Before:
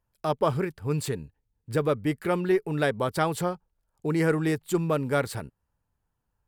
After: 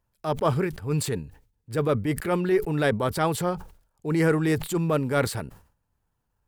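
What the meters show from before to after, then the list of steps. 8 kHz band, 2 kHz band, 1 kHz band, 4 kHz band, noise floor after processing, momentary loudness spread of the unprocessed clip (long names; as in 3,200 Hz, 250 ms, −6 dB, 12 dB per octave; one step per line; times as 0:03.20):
+4.0 dB, +1.5 dB, +1.0 dB, +2.5 dB, −76 dBFS, 9 LU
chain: transient designer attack −7 dB, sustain −2 dB
level that may fall only so fast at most 120 dB per second
level +3.5 dB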